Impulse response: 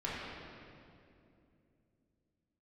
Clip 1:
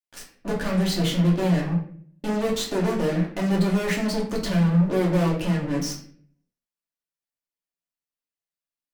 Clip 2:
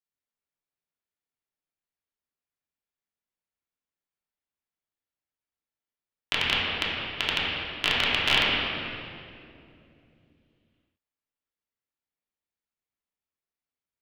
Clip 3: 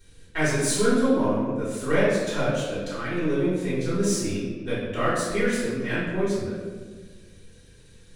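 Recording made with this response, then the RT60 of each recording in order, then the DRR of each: 2; 0.55 s, 2.7 s, 1.5 s; -3.5 dB, -8.5 dB, -12.0 dB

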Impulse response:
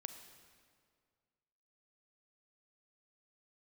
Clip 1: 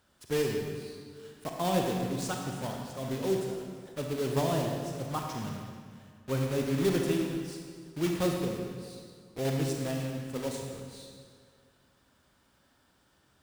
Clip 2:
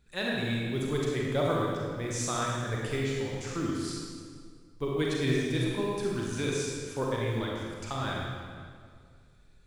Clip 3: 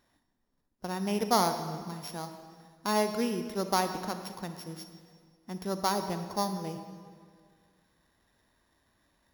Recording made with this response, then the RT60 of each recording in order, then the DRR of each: 3; 2.1 s, 2.1 s, 2.0 s; 1.0 dB, -3.5 dB, 8.0 dB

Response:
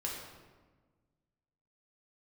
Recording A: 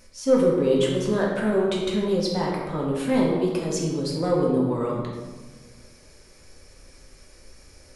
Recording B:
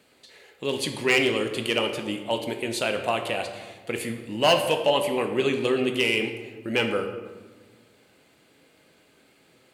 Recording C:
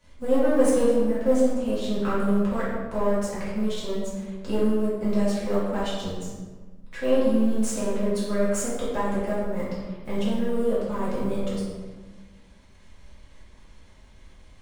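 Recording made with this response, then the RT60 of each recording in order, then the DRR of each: A; 1.4 s, 1.4 s, 1.4 s; -3.5 dB, 4.5 dB, -10.0 dB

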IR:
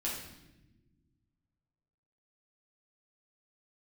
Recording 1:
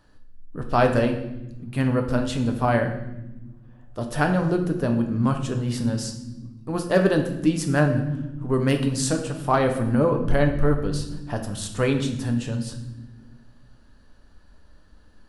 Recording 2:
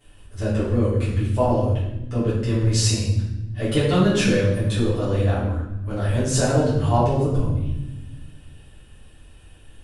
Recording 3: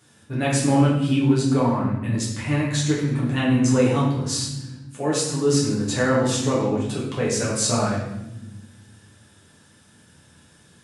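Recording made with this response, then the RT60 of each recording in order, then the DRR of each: 3; no single decay rate, no single decay rate, no single decay rate; 3.5 dB, -11.0 dB, -6.0 dB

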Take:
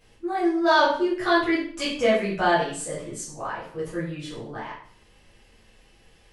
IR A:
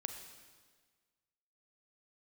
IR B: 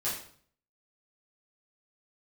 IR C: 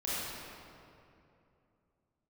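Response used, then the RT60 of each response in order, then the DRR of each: B; 1.5 s, 0.55 s, 2.7 s; 5.5 dB, -10.0 dB, -10.0 dB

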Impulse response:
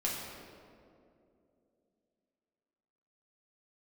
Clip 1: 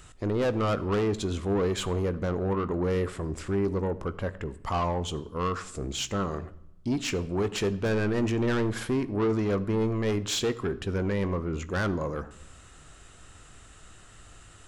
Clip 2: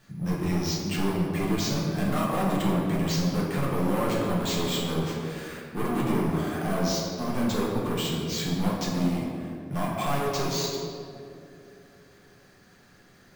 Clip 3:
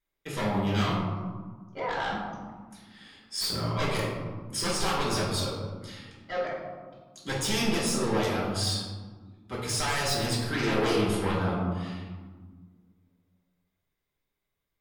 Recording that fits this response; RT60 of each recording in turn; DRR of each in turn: 2; no single decay rate, 2.7 s, 1.5 s; 13.0 dB, -5.0 dB, -7.5 dB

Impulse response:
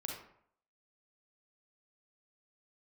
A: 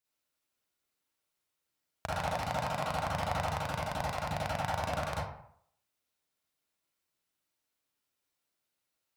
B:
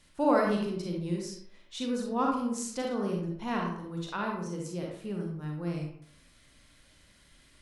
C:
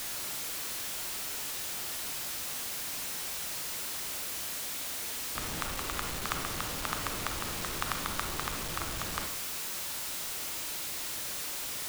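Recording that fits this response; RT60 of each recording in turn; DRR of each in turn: B; 0.65 s, 0.65 s, 0.65 s; -6.5 dB, -0.5 dB, 5.0 dB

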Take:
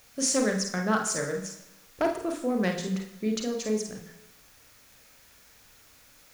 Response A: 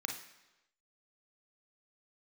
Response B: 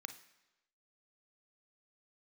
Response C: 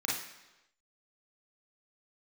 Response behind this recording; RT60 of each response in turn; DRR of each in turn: A; 1.0 s, 1.0 s, 1.0 s; 2.5 dB, 9.0 dB, -5.0 dB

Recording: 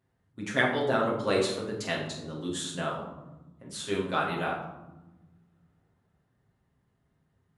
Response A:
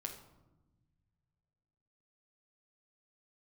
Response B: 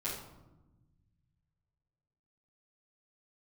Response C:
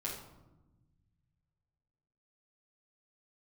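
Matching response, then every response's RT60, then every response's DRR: C; 1.1 s, 1.0 s, 1.0 s; 2.0 dB, -11.0 dB, -6.0 dB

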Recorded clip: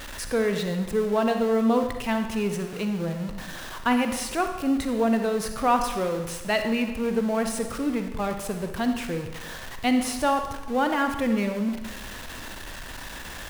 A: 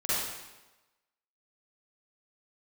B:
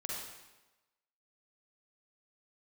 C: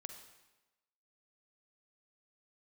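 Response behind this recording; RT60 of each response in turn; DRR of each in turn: C; 1.1 s, 1.1 s, 1.1 s; -12.5 dB, -4.0 dB, 6.0 dB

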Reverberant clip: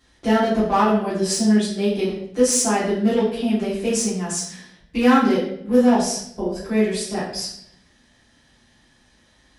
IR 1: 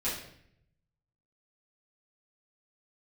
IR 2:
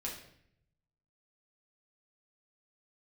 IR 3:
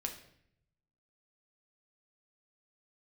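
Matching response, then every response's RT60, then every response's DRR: 1; 0.65 s, 0.65 s, 0.70 s; -10.0 dB, -3.0 dB, 3.0 dB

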